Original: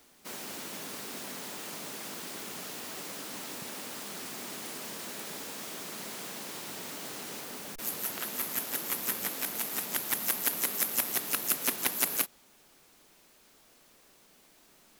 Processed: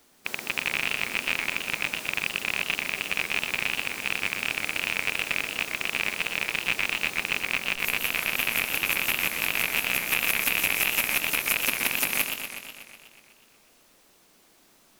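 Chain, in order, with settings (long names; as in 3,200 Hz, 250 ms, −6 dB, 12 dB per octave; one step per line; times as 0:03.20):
loose part that buzzes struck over −49 dBFS, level −10 dBFS
feedback echo with a swinging delay time 123 ms, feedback 69%, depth 171 cents, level −6.5 dB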